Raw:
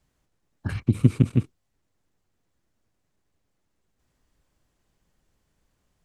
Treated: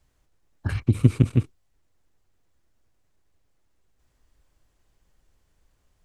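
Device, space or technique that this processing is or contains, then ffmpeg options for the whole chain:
low shelf boost with a cut just above: -af "lowshelf=f=63:g=7.5,equalizer=f=190:t=o:w=1:g=-5.5,volume=1.26"

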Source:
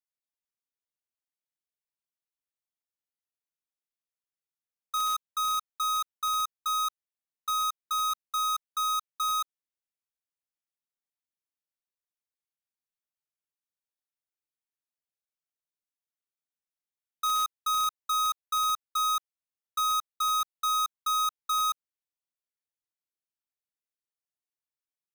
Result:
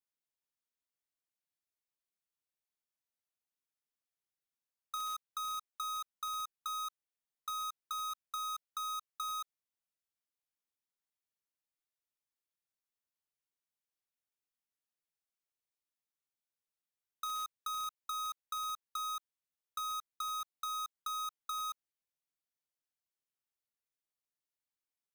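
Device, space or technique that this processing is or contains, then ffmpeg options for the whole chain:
de-esser from a sidechain: -filter_complex "[0:a]asplit=2[s0][s1];[s1]highpass=6000,apad=whole_len=1108848[s2];[s0][s2]sidechaincompress=threshold=0.00447:ratio=4:attack=16:release=30,volume=0.75"

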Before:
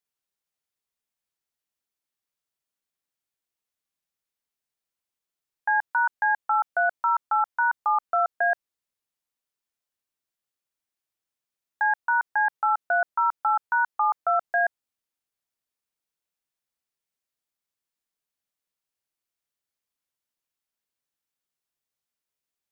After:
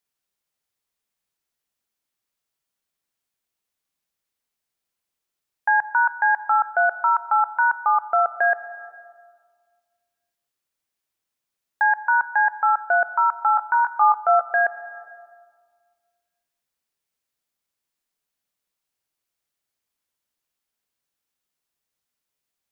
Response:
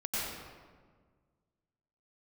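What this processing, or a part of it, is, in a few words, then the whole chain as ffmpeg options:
compressed reverb return: -filter_complex "[0:a]asettb=1/sr,asplit=3[s0][s1][s2];[s0]atrim=end=13.564[s3];[s1]atrim=start=13.56:end=14.41,asetpts=PTS-STARTPTS,afade=t=in:d=0.004:c=qsin,afade=t=out:st=0.846:d=0.004:c=qsin,asplit=2[s4][s5];[s5]adelay=20,volume=0.562[s6];[s4][s6]amix=inputs=2:normalize=0,atrim=end_sample=37485[s7];[s2]atrim=start=14.406[s8];[s3][s7]acrossfade=d=0.004:c1=hsin:c2=qsin[s9];[s9][s8]acrossfade=d=0.004:c1=qsin:c2=hsin,asplit=2[s10][s11];[1:a]atrim=start_sample=2205[s12];[s11][s12]afir=irnorm=-1:irlink=0,acompressor=threshold=0.0794:ratio=6,volume=0.188[s13];[s10][s13]amix=inputs=2:normalize=0,volume=1.5"

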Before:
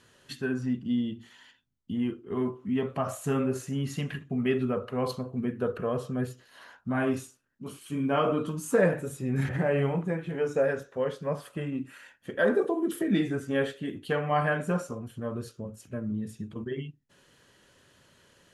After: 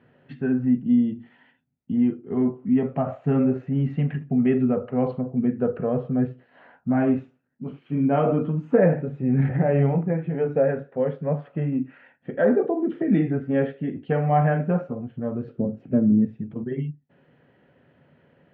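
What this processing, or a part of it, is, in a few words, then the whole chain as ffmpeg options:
bass cabinet: -filter_complex "[0:a]highpass=76,equalizer=f=150:t=q:w=4:g=9,equalizer=f=250:t=q:w=4:g=7,equalizer=f=500:t=q:w=4:g=3,equalizer=f=740:t=q:w=4:g=6,equalizer=f=1100:t=q:w=4:g=-8,equalizer=f=1600:t=q:w=4:g=-4,lowpass=f=2200:w=0.5412,lowpass=f=2200:w=1.3066,asettb=1/sr,asplit=3[s0][s1][s2];[s0]atrim=end=15.484[s3];[s1]atrim=start=15.48:end=16.25,asetpts=PTS-STARTPTS,afade=t=in:d=0.004:c=qsin,afade=t=out:st=0.766:d=0.004:c=qsin,equalizer=f=290:w=0.53:g=10[s4];[s2]atrim=start=16.246[s5];[s3][s4]acrossfade=d=0.004:c1=hsin:c2=qsin[s6];[s6][s5]acrossfade=d=0.004:c1=qsin:c2=hsin,volume=1.26"

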